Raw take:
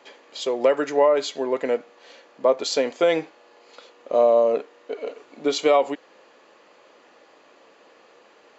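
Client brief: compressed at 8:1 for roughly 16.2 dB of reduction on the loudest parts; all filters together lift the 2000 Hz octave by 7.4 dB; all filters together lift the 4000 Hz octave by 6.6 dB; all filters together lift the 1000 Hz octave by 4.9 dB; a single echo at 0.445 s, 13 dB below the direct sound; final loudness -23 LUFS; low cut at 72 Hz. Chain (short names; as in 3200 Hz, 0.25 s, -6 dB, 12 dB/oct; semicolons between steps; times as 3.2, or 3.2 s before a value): HPF 72 Hz; bell 1000 Hz +5 dB; bell 2000 Hz +6 dB; bell 4000 Hz +6 dB; compressor 8:1, threshold -28 dBFS; echo 0.445 s -13 dB; gain +10.5 dB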